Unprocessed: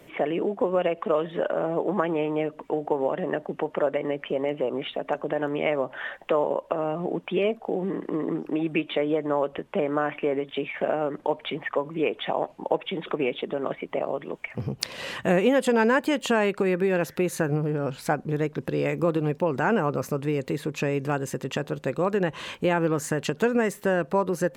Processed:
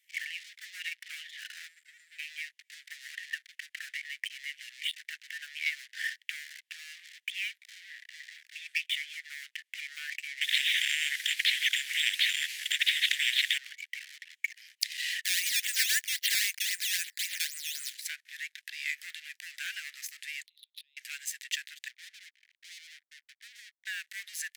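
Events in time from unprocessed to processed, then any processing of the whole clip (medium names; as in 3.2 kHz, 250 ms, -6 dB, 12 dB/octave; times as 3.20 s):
1.68–2.19 s: spectral selection erased 330–7000 Hz
10.41–13.58 s: spectrum-flattening compressor 10:1
15.25–17.95 s: decimation with a swept rate 10× 3.8 Hz
20.46–20.97 s: Butterworth band-pass 3.7 kHz, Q 4.1
21.88–23.87 s: rippled Chebyshev low-pass 1.1 kHz, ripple 6 dB
whole clip: waveshaping leveller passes 3; steep high-pass 1.8 kHz 72 dB/octave; peaking EQ 2.6 kHz -4 dB 0.39 oct; trim -6 dB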